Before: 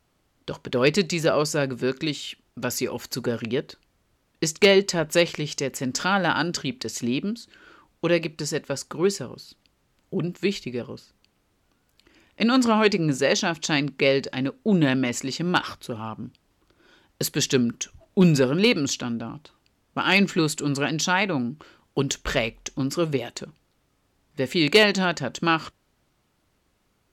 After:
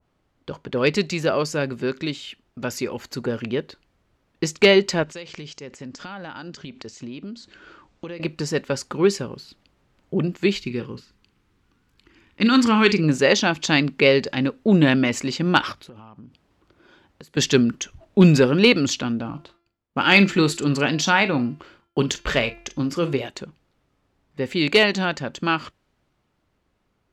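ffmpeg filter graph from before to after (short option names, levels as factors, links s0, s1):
-filter_complex "[0:a]asettb=1/sr,asplit=3[s0][s1][s2];[s0]atrim=end=5.034[s3];[s1]atrim=start=5.03:end=8.2,asetpts=PTS-STARTPTS,afade=t=in:d=0.004:c=qsin,afade=t=out:st=3.166:d=0.004:c=qsin,highshelf=f=4700:g=9,acompressor=threshold=0.0178:ratio=8:attack=3.2:release=140:knee=1:detection=peak,lowpass=f=7500:w=0.5412,lowpass=f=7500:w=1.3066[s4];[s2]atrim=start=8.196[s5];[s3][s4]acrossfade=d=0.004:c1=hsin:c2=qsin[s6];[s6][s5]acrossfade=d=0.004:c1=qsin:c2=hsin,asettb=1/sr,asplit=3[s7][s8][s9];[s7]atrim=end=10.604[s10];[s8]atrim=start=10.6:end=13.04,asetpts=PTS-STARTPTS,afade=t=in:d=0.004:c=qsin,afade=t=out:st=2.436:d=0.004:c=qsin,equalizer=f=630:t=o:w=0.6:g=-14,asplit=2[s11][s12];[s12]adelay=41,volume=0.251[s13];[s11][s13]amix=inputs=2:normalize=0,atrim=end_sample=107604[s14];[s9]atrim=start=13.036[s15];[s10][s14]acrossfade=d=0.004:c1=hsin:c2=qsin[s16];[s16][s15]acrossfade=d=0.004:c1=qsin:c2=hsin,asettb=1/sr,asplit=3[s17][s18][s19];[s17]atrim=end=15.724[s20];[s18]atrim=start=15.72:end=17.37,asetpts=PTS-STARTPTS,afade=t=in:d=0.004:c=qsin,afade=t=out:st=1.646:d=0.004:c=qsin,highpass=47,acompressor=threshold=0.00708:ratio=12:attack=3.2:release=140:knee=1:detection=peak[s21];[s19]atrim=start=17.366[s22];[s20][s21]acrossfade=d=0.004:c1=hsin:c2=qsin[s23];[s23][s22]acrossfade=d=0.004:c1=qsin:c2=hsin,asettb=1/sr,asplit=3[s24][s25][s26];[s24]atrim=end=19.214[s27];[s25]atrim=start=19.21:end=23.26,asetpts=PTS-STARTPTS,afade=t=in:d=0.004:c=qsin,afade=t=out:st=4.046:d=0.004:c=qsin,agate=range=0.0224:threshold=0.00158:ratio=3:release=100:detection=peak,asplit=2[s28][s29];[s29]adelay=41,volume=0.224[s30];[s28][s30]amix=inputs=2:normalize=0,atrim=end_sample=178605,bandreject=f=342.3:t=h:w=4,bandreject=f=684.6:t=h:w=4,bandreject=f=1026.9:t=h:w=4,bandreject=f=1369.2:t=h:w=4,bandreject=f=1711.5:t=h:w=4,bandreject=f=2053.8:t=h:w=4,bandreject=f=2396.1:t=h:w=4,bandreject=f=2738.4:t=h:w=4,bandreject=f=3080.7:t=h:w=4,bandreject=f=3423:t=h:w=4,bandreject=f=3765.3:t=h:w=4,bandreject=f=4107.6:t=h:w=4,bandreject=f=4449.9:t=h:w=4,bandreject=f=4792.2:t=h:w=4,bandreject=f=5134.5:t=h:w=4,bandreject=f=5476.8:t=h:w=4,bandreject=f=5819.1:t=h:w=4,bandreject=f=6161.4:t=h:w=4[s31];[s26]atrim=start=23.256[s32];[s27][s31]acrossfade=d=0.004:c1=hsin:c2=qsin[s33];[s33][s32]acrossfade=d=0.004:c1=qsin:c2=hsin,lowpass=f=2400:p=1,dynaudnorm=f=310:g=31:m=1.78,adynamicequalizer=threshold=0.0224:dfrequency=1700:dqfactor=0.7:tfrequency=1700:tqfactor=0.7:attack=5:release=100:ratio=0.375:range=2.5:mode=boostabove:tftype=highshelf"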